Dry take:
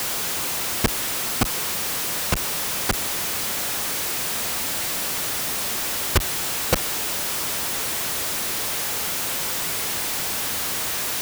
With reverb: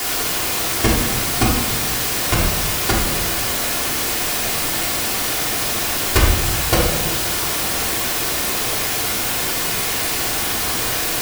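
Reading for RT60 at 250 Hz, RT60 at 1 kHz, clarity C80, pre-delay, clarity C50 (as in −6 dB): 1.4 s, 0.85 s, 6.0 dB, 3 ms, 3.0 dB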